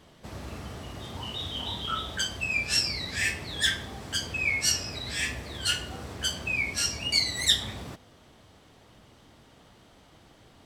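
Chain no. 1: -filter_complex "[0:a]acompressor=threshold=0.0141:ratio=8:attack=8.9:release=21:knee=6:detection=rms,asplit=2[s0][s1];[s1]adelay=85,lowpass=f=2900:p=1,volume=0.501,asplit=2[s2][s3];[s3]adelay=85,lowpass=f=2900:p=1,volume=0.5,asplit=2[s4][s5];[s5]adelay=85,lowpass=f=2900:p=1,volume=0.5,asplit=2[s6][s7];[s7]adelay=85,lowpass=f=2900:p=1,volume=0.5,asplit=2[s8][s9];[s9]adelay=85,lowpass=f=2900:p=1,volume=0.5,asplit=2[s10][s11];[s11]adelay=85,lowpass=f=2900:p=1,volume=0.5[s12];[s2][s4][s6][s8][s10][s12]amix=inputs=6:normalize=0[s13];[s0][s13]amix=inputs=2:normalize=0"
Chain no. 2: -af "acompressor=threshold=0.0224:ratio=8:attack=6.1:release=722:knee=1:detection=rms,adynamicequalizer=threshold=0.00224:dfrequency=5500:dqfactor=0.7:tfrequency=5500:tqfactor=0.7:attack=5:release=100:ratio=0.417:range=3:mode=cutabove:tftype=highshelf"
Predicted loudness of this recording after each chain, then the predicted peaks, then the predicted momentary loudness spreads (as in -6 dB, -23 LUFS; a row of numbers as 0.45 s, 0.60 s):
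-36.5 LUFS, -39.5 LUFS; -24.5 dBFS, -25.5 dBFS; 20 LU, 19 LU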